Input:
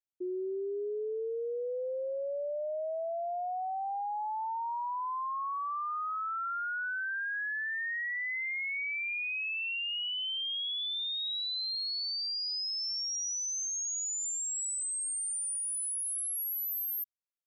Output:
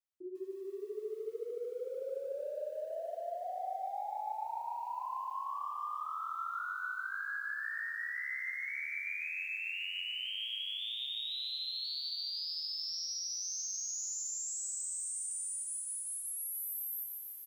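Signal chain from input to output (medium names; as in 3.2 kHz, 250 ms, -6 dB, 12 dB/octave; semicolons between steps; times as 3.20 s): peaking EQ 390 Hz -5.5 dB 1.8 oct; de-hum 306.2 Hz, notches 11; peak limiter -35 dBFS, peak gain reduction 5 dB; 15.63–16.31 s: comb of notches 420 Hz; flange 1.9 Hz, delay 6.6 ms, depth 10 ms, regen +14%; on a send: feedback delay 123 ms, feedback 40%, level -22 dB; on the sum: bit-crushed delay 148 ms, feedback 80%, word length 11-bit, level -5.5 dB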